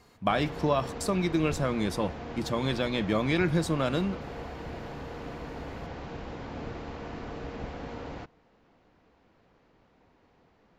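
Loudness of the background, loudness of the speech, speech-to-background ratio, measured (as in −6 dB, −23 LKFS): −40.0 LKFS, −29.0 LKFS, 11.0 dB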